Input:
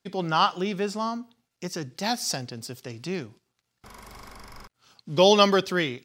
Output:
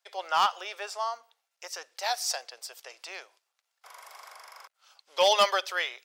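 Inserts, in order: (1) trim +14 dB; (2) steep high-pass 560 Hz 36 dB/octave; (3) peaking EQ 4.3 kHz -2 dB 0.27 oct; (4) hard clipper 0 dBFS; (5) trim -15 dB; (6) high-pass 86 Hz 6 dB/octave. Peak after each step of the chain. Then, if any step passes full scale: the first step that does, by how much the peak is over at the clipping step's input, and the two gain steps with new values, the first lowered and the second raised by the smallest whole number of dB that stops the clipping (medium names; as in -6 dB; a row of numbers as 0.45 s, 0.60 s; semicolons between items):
+10.0 dBFS, +8.5 dBFS, +8.5 dBFS, 0.0 dBFS, -15.0 dBFS, -13.5 dBFS; step 1, 8.5 dB; step 1 +5 dB, step 5 -6 dB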